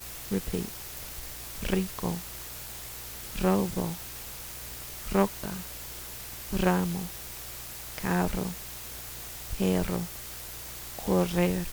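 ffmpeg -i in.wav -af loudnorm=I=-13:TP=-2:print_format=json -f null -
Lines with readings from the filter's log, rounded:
"input_i" : "-31.6",
"input_tp" : "-7.8",
"input_lra" : "2.2",
"input_thresh" : "-41.6",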